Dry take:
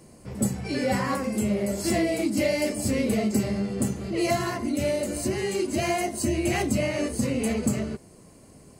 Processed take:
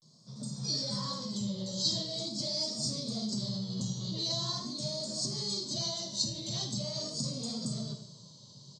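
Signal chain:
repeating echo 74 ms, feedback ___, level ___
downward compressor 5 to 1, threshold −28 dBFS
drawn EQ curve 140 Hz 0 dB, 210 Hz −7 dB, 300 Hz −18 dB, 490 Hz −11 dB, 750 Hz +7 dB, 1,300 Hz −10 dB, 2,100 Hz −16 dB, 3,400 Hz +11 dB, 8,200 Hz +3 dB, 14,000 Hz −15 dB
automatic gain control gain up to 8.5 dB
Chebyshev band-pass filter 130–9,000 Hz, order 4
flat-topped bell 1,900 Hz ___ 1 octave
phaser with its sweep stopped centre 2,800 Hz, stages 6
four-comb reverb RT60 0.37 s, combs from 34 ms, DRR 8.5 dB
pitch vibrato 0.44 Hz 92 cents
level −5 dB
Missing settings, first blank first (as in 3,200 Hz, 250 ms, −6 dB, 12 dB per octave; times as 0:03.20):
59%, −15 dB, −9 dB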